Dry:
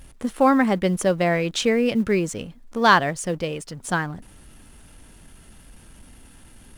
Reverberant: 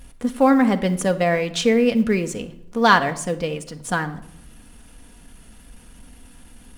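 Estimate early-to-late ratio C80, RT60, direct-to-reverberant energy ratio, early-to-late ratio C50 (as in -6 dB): 18.5 dB, 0.80 s, 6.5 dB, 14.5 dB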